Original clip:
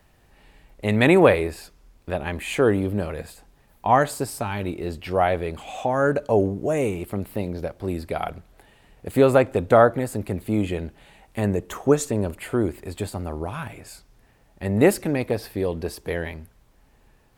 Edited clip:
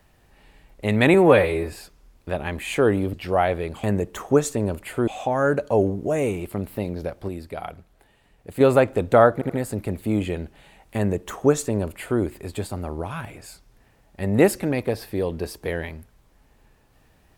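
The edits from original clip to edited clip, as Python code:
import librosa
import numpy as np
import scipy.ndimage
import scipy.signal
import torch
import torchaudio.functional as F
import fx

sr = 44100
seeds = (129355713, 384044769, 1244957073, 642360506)

y = fx.edit(x, sr, fx.stretch_span(start_s=1.14, length_s=0.39, factor=1.5),
    fx.cut(start_s=2.94, length_s=2.02),
    fx.clip_gain(start_s=7.87, length_s=1.32, db=-5.5),
    fx.stutter(start_s=9.92, slice_s=0.08, count=3),
    fx.duplicate(start_s=11.39, length_s=1.24, to_s=5.66), tone=tone)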